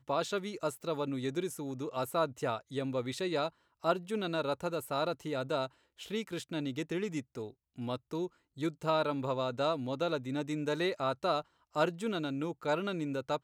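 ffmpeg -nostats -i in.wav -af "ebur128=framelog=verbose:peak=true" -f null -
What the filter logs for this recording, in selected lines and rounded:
Integrated loudness:
  I:         -35.0 LUFS
  Threshold: -45.1 LUFS
Loudness range:
  LRA:         3.8 LU
  Threshold: -55.1 LUFS
  LRA low:   -37.3 LUFS
  LRA high:  -33.5 LUFS
True peak:
  Peak:      -15.6 dBFS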